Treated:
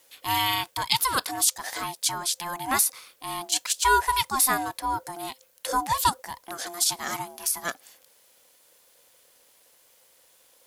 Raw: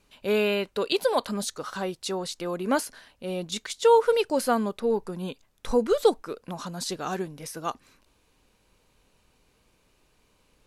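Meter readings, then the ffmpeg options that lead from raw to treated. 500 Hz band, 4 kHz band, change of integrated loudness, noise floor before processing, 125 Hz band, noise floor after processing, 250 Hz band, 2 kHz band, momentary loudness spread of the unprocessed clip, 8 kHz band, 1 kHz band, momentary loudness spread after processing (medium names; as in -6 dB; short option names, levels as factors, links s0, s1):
-14.0 dB, +6.5 dB, +1.5 dB, -67 dBFS, -2.5 dB, -60 dBFS, -8.5 dB, +6.0 dB, 15 LU, +12.5 dB, +5.0 dB, 14 LU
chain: -af "aeval=exprs='val(0)*sin(2*PI*520*n/s)':c=same,aemphasis=mode=production:type=riaa,acrusher=bits=10:mix=0:aa=0.000001,volume=1.33"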